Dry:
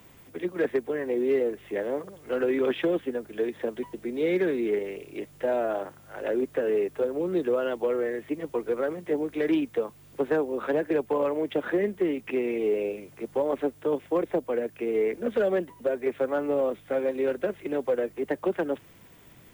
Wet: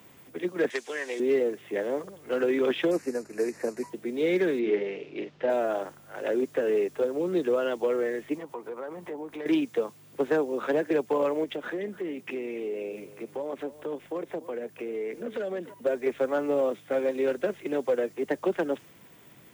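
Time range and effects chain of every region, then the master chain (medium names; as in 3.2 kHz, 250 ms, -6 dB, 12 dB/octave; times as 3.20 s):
0.70–1.20 s: frequency weighting ITU-R 468 + companded quantiser 8-bit
2.91–3.90 s: CVSD coder 64 kbps + Butterworth band-stop 3.3 kHz, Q 1.9
4.59–5.50 s: low-pass 4.7 kHz 24 dB/octave + doubling 45 ms -6 dB
8.35–9.46 s: peaking EQ 930 Hz +11 dB 0.76 oct + compression 3:1, threshold -37 dBFS
11.44–15.74 s: compression 2.5:1, threshold -33 dBFS + delay 294 ms -16.5 dB
whole clip: high-pass 120 Hz 12 dB/octave; dynamic bell 6 kHz, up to +7 dB, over -56 dBFS, Q 0.82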